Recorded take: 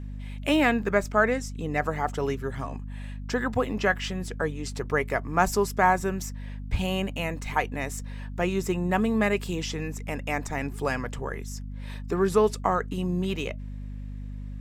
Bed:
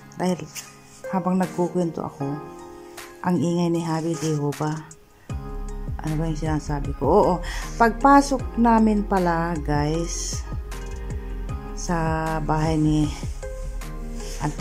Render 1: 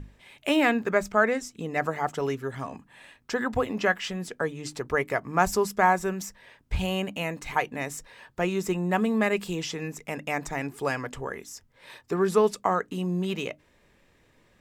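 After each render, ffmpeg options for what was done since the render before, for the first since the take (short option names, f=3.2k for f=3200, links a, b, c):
-af "bandreject=f=50:t=h:w=6,bandreject=f=100:t=h:w=6,bandreject=f=150:t=h:w=6,bandreject=f=200:t=h:w=6,bandreject=f=250:t=h:w=6,bandreject=f=300:t=h:w=6"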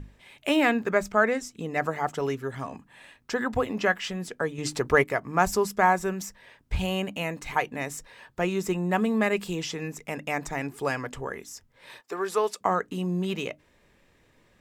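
-filter_complex "[0:a]asettb=1/sr,asplit=3[a][b][c];[a]atrim=end=4.584[d];[b]atrim=start=4.58:end=5.04,asetpts=PTS-STARTPTS,afade=t=in:d=0.004:c=qsin,afade=t=out:st=0.456:d=0.004:c=qsin,acontrast=45[e];[c]atrim=start=5.036[f];[d][e]acrossfade=d=0.004:c1=hsin:c2=qsin[g];[g][f]acrossfade=d=0.004:c1=qsin:c2=hsin,asettb=1/sr,asplit=3[h][i][j];[h]atrim=end=12.014[k];[i]atrim=start=12.01:end=12.61,asetpts=PTS-STARTPTS,afade=t=in:d=0.004:c=qsin,afade=t=out:st=0.596:d=0.004:c=qsin,highpass=510[l];[j]atrim=start=12.606[m];[k][l]acrossfade=d=0.004:c1=hsin:c2=qsin[n];[n][m]acrossfade=d=0.004:c1=qsin:c2=hsin"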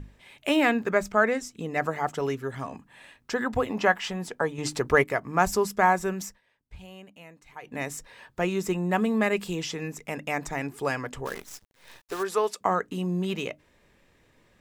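-filter_complex "[0:a]asettb=1/sr,asplit=3[a][b][c];[a]atrim=end=3.704[d];[b]atrim=start=3.7:end=4.69,asetpts=PTS-STARTPTS,afade=t=in:d=0.004:c=qsin,afade=t=out:st=0.986:d=0.004:c=qsin,equalizer=f=870:t=o:w=0.71:g=8[e];[c]atrim=start=4.686[f];[d][e]acrossfade=d=0.004:c1=hsin:c2=qsin[g];[g][f]acrossfade=d=0.004:c1=qsin:c2=hsin,asplit=3[h][i][j];[h]afade=t=out:st=11.25:d=0.02[k];[i]acrusher=bits=7:dc=4:mix=0:aa=0.000001,afade=t=in:st=11.25:d=0.02,afade=t=out:st=12.22:d=0.02[l];[j]afade=t=in:st=12.22:d=0.02[m];[k][l][m]amix=inputs=3:normalize=0,asplit=3[n][o][p];[n]atrim=end=6.41,asetpts=PTS-STARTPTS,afade=t=out:st=6.27:d=0.14:silence=0.133352[q];[o]atrim=start=6.41:end=7.62,asetpts=PTS-STARTPTS,volume=-17.5dB[r];[p]atrim=start=7.62,asetpts=PTS-STARTPTS,afade=t=in:d=0.14:silence=0.133352[s];[q][r][s]concat=n=3:v=0:a=1"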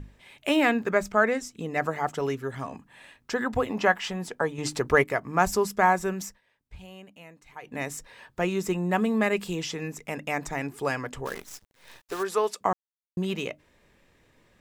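-filter_complex "[0:a]asplit=3[a][b][c];[a]atrim=end=12.73,asetpts=PTS-STARTPTS,afade=t=out:st=12.726:d=0.004:c=hsin[d];[b]atrim=start=12.73:end=13.17,asetpts=PTS-STARTPTS,volume=0[e];[c]atrim=start=13.17,asetpts=PTS-STARTPTS,afade=t=in:d=0.004:c=hsin[f];[d][e][f]concat=n=3:v=0:a=1"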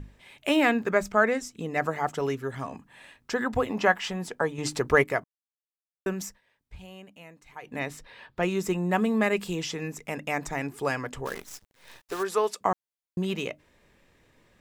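-filter_complex "[0:a]asettb=1/sr,asplit=3[a][b][c];[a]atrim=end=7.794[d];[b]atrim=start=7.79:end=8.43,asetpts=PTS-STARTPTS,afade=t=in:d=0.004:c=qsin,afade=t=out:st=0.636:d=0.004:c=qsin,highshelf=f=5.2k:t=q:w=1.5:g=-7.5[e];[c]atrim=start=8.426[f];[d][e]acrossfade=d=0.004:c1=hsin:c2=qsin[g];[g][f]acrossfade=d=0.004:c1=qsin:c2=hsin,asplit=3[h][i][j];[h]atrim=end=5.24,asetpts=PTS-STARTPTS,afade=t=out:st=5.236:d=0.004:c=hsin[k];[i]atrim=start=5.24:end=6.06,asetpts=PTS-STARTPTS,volume=0[l];[j]atrim=start=6.06,asetpts=PTS-STARTPTS,afade=t=in:d=0.004:c=hsin[m];[k][l][m]concat=n=3:v=0:a=1"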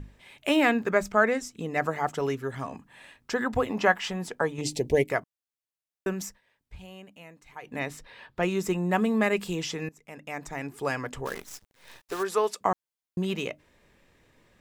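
-filter_complex "[0:a]asettb=1/sr,asplit=3[a][b][c];[a]atrim=end=4.614[d];[b]atrim=start=4.61:end=5.1,asetpts=PTS-STARTPTS,afade=t=in:d=0.004:c=qsin,afade=t=out:st=0.486:d=0.004:c=qsin,asuperstop=centerf=1300:order=4:qfactor=0.72[e];[c]atrim=start=5.096[f];[d][e]acrossfade=d=0.004:c1=hsin:c2=qsin[g];[g][f]acrossfade=d=0.004:c1=qsin:c2=hsin,asplit=2[h][i];[h]atrim=end=9.89,asetpts=PTS-STARTPTS,afade=t=out:st=9.886:d=0.004:c=hsin:silence=0.112202[j];[i]atrim=start=9.89,asetpts=PTS-STARTPTS,afade=t=in:d=1.17:silence=0.112202[k];[j][k]concat=n=2:v=0:a=1"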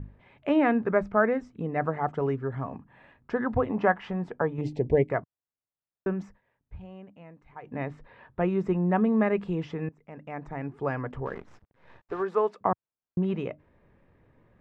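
-af "lowpass=1.4k,equalizer=f=110:t=o:w=1.5:g=5.5"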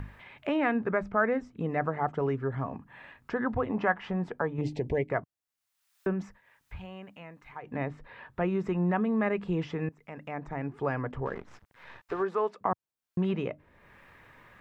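-filter_complex "[0:a]acrossover=split=1000[a][b];[a]alimiter=limit=-21.5dB:level=0:latency=1:release=116[c];[b]acompressor=mode=upward:threshold=-41dB:ratio=2.5[d];[c][d]amix=inputs=2:normalize=0"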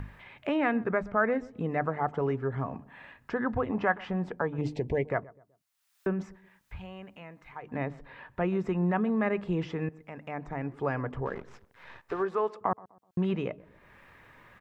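-filter_complex "[0:a]asplit=2[a][b];[b]adelay=126,lowpass=f=1.1k:p=1,volume=-20dB,asplit=2[c][d];[d]adelay=126,lowpass=f=1.1k:p=1,volume=0.4,asplit=2[e][f];[f]adelay=126,lowpass=f=1.1k:p=1,volume=0.4[g];[a][c][e][g]amix=inputs=4:normalize=0"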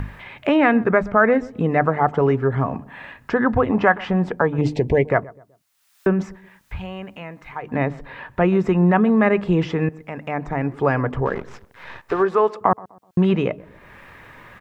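-af "volume=11.5dB,alimiter=limit=-3dB:level=0:latency=1"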